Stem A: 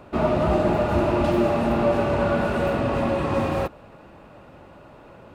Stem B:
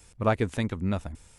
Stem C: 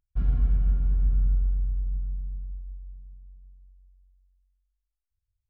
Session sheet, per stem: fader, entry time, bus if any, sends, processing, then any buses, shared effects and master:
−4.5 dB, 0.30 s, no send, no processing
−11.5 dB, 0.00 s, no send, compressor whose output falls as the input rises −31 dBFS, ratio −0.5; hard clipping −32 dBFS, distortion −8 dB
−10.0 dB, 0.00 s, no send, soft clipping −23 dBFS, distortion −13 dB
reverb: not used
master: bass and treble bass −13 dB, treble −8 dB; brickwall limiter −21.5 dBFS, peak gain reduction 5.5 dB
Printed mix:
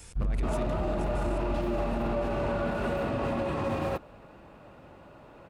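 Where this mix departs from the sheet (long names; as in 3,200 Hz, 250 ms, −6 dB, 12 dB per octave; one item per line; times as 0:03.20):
stem B −11.5 dB → +0.5 dB
stem C −10.0 dB → −1.0 dB
master: missing bass and treble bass −13 dB, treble −8 dB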